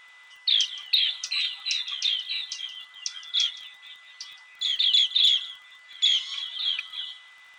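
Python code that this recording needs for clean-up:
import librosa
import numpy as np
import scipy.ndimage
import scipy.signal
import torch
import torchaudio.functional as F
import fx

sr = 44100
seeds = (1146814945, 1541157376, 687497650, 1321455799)

y = fx.fix_declip(x, sr, threshold_db=-11.0)
y = fx.fix_declick_ar(y, sr, threshold=6.5)
y = fx.notch(y, sr, hz=2000.0, q=30.0)
y = fx.fix_echo_inverse(y, sr, delay_ms=171, level_db=-20.0)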